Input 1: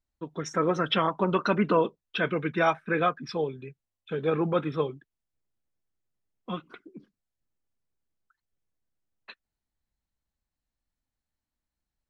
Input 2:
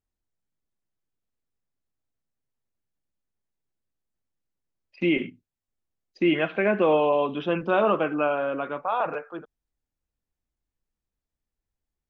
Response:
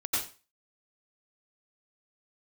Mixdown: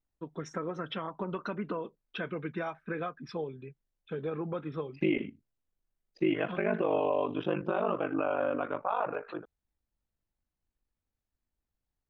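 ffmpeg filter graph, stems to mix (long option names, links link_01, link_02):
-filter_complex "[0:a]acompressor=threshold=-27dB:ratio=12,volume=-3.5dB[link_01];[1:a]aeval=exprs='val(0)*sin(2*PI*25*n/s)':channel_layout=same,volume=0.5dB[link_02];[link_01][link_02]amix=inputs=2:normalize=0,highshelf=frequency=2800:gain=-8.5,alimiter=limit=-18.5dB:level=0:latency=1:release=184"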